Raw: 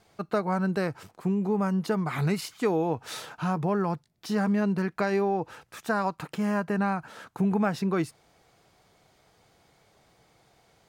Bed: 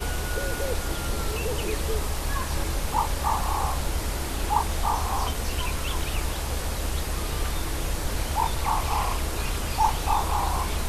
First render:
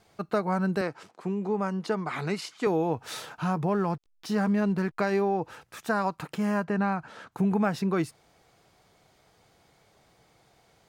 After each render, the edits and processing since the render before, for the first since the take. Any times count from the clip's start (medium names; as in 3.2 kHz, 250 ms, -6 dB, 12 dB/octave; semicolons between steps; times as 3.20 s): 0.81–2.67 s: band-pass 230–7500 Hz; 3.71–5.22 s: hysteresis with a dead band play -49.5 dBFS; 6.64–7.32 s: distance through air 57 m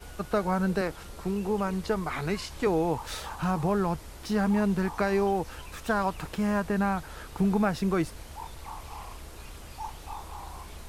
add bed -16 dB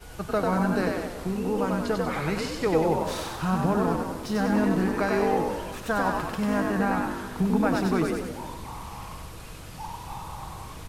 on a send: frequency-shifting echo 95 ms, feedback 52%, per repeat +50 Hz, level -3 dB; on the sum: simulated room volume 2500 m³, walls mixed, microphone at 0.59 m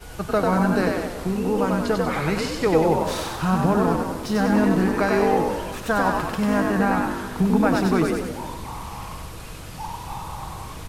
trim +4.5 dB